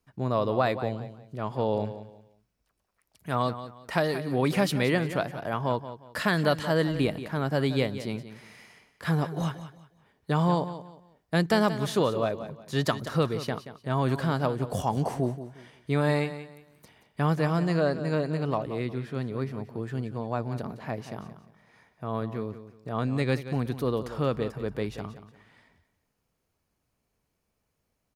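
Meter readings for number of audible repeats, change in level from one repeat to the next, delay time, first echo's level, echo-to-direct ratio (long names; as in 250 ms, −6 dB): 3, −11.0 dB, 179 ms, −12.5 dB, −12.0 dB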